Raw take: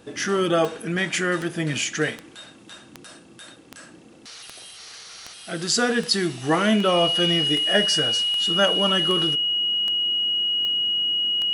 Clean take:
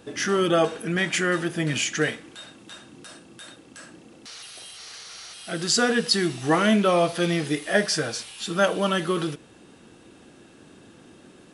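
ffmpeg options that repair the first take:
-af "adeclick=t=4,bandreject=f=2900:w=30"

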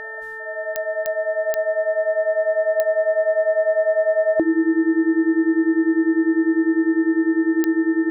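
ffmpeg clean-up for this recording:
-af "adeclick=t=4,bandreject=f=439.8:t=h:w=4,bandreject=f=879.6:t=h:w=4,bandreject=f=1319.4:t=h:w=4,bandreject=f=1759.2:t=h:w=4,bandreject=f=1800:w=30"

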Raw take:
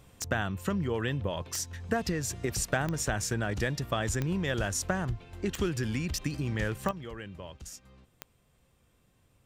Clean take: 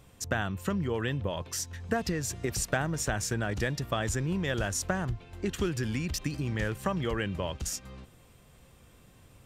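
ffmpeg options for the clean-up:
-af "adeclick=t=4,asetnsamples=n=441:p=0,asendcmd='6.91 volume volume 10.5dB',volume=1"

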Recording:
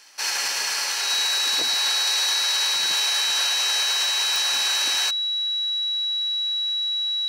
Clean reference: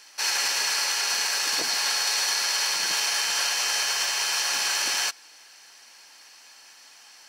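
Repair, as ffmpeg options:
-af "adeclick=t=4,bandreject=f=3900:w=30"

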